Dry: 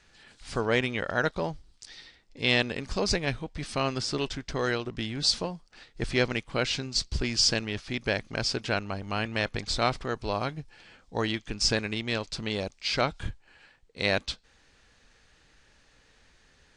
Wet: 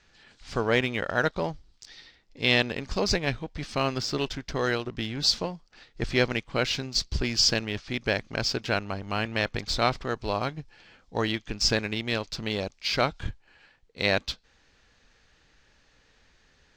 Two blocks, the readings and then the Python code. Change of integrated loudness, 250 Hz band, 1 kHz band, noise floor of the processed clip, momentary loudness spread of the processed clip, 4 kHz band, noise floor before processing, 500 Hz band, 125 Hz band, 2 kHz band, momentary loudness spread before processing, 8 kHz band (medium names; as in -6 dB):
+1.5 dB, +1.0 dB, +1.5 dB, -63 dBFS, 11 LU, +1.5 dB, -62 dBFS, +1.5 dB, +1.0 dB, +1.5 dB, 11 LU, 0.0 dB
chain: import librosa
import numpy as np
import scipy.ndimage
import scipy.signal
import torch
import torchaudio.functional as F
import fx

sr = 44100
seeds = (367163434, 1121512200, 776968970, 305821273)

p1 = scipy.signal.sosfilt(scipy.signal.butter(4, 7100.0, 'lowpass', fs=sr, output='sos'), x)
p2 = np.sign(p1) * np.maximum(np.abs(p1) - 10.0 ** (-38.0 / 20.0), 0.0)
p3 = p1 + (p2 * 10.0 ** (-7.5 / 20.0))
y = p3 * 10.0 ** (-1.0 / 20.0)